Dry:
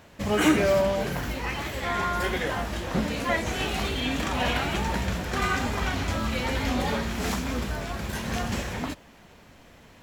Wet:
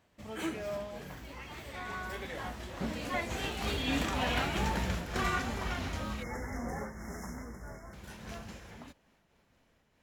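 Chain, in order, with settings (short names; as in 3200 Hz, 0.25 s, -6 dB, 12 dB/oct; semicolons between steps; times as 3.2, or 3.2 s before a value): Doppler pass-by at 4.45, 17 m/s, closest 16 m; spectral delete 6.23–7.94, 2200–5100 Hz; noise-modulated level, depth 55%; gain -1 dB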